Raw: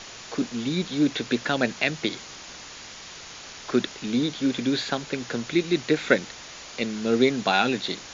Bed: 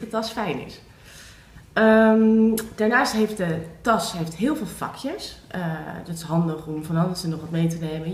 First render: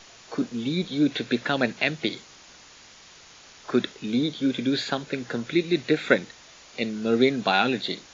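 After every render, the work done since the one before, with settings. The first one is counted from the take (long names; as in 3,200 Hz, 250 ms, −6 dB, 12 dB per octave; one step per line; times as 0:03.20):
noise reduction from a noise print 8 dB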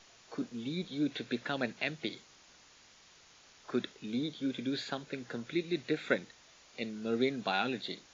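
level −10.5 dB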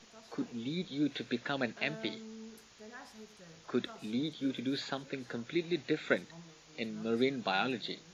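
mix in bed −31.5 dB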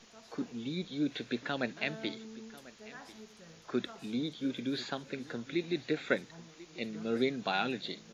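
single-tap delay 1,043 ms −19 dB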